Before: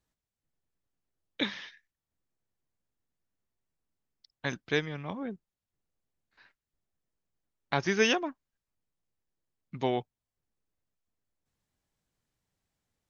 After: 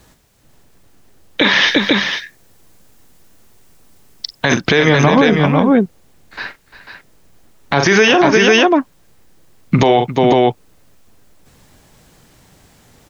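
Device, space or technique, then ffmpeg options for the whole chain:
mastering chain: -filter_complex "[0:a]asettb=1/sr,asplit=3[a][b][c];[a]atrim=end=1.634[d];[b]atrim=start=1.63:end=4.57,asetpts=PTS-STARTPTS,afade=t=in:d=0.004:c=qsin,afade=t=out:st=2.936:d=0.004:c=qsin,highshelf=f=4.5k:g=5.5[e];[c]atrim=start=4.566[f];[d][e]acrossfade=d=0.004:c1=hsin:c2=qsin[g];[g][f]acrossfade=d=0.004:c1=qsin:c2=hsin,equalizer=f=390:t=o:w=3:g=3,aecho=1:1:42|349|495:0.251|0.178|0.335,acrossover=split=440|4000[h][i][j];[h]acompressor=threshold=-38dB:ratio=4[k];[i]acompressor=threshold=-30dB:ratio=4[l];[j]acompressor=threshold=-50dB:ratio=4[m];[k][l][m]amix=inputs=3:normalize=0,acompressor=threshold=-39dB:ratio=1.5,alimiter=level_in=34dB:limit=-1dB:release=50:level=0:latency=1,volume=-1dB"

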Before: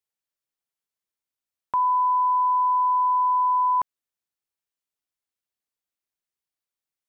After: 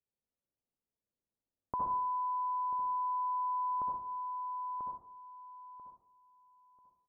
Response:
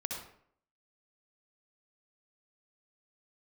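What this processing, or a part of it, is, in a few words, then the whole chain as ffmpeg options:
television next door: -filter_complex "[0:a]aecho=1:1:990|1980|2970:0.282|0.0705|0.0176,acompressor=threshold=-24dB:ratio=5,lowpass=490[a];[1:a]atrim=start_sample=2205[b];[a][b]afir=irnorm=-1:irlink=0,volume=4.5dB"

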